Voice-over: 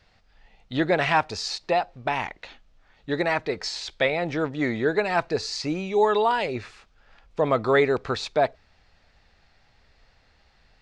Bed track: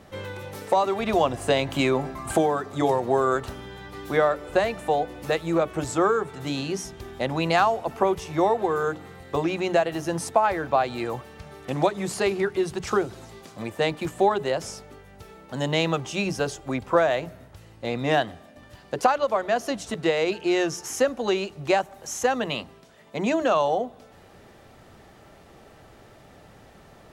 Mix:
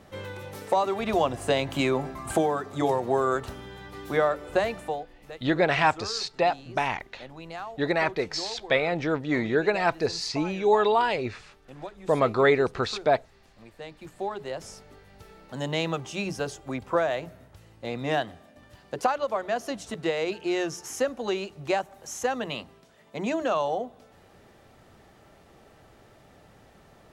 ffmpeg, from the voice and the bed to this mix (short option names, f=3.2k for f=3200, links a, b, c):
-filter_complex "[0:a]adelay=4700,volume=-0.5dB[a];[1:a]volume=10.5dB,afade=t=out:st=4.74:d=0.33:silence=0.177828,afade=t=in:st=13.91:d=1.22:silence=0.223872[b];[a][b]amix=inputs=2:normalize=0"